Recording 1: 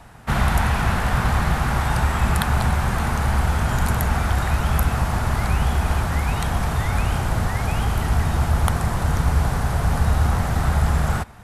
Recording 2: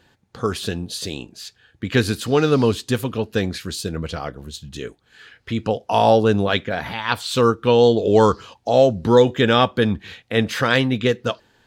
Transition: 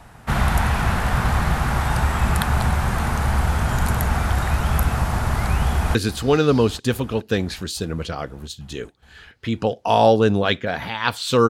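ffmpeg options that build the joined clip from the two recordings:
-filter_complex "[0:a]apad=whole_dur=11.49,atrim=end=11.49,atrim=end=5.952[a];[1:a]atrim=start=1.988:end=7.53[b];[a][b]acrossfade=d=0.004:c1=hsin:c2=hsin,asplit=2[c][d];[d]afade=t=in:st=5.66:d=0.01,afade=t=out:st=5.95:d=0.01,aecho=0:1:420|840|1260|1680|2100|2520|2940|3360|3780|4200|4620:0.177828|0.133371|0.100028|0.0750212|0.0562659|0.0421994|0.0316496|0.0237372|0.0178029|0.0133522|0.0100141[e];[c][e]amix=inputs=2:normalize=0"

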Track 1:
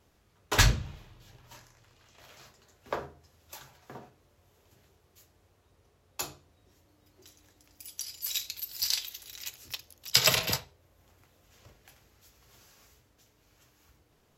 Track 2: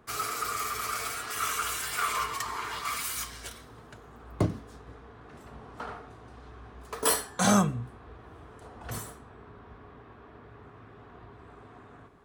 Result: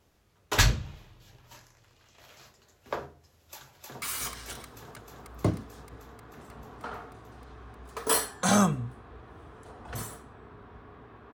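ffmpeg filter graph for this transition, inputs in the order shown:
-filter_complex "[0:a]apad=whole_dur=11.33,atrim=end=11.33,atrim=end=4.022[a];[1:a]atrim=start=2.978:end=10.29[b];[a][b]acrossfade=d=0.004:c1=hsin:c2=hsin,asplit=2[c][d];[d]afade=t=in:st=3.41:d=0.01,afade=t=out:st=4.02:d=0.01,aecho=0:1:310|620|930|1240|1550|1860|2170|2480|2790|3100|3410|3720:0.841395|0.673116|0.538493|0.430794|0.344635|0.275708|0.220567|0.176453|0.141163|0.11293|0.0903441|0.0722753[e];[c][e]amix=inputs=2:normalize=0"

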